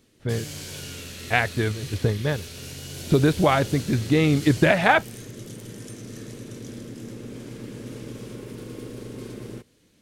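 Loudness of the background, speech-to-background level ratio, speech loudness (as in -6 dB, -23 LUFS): -37.0 LUFS, 14.5 dB, -22.5 LUFS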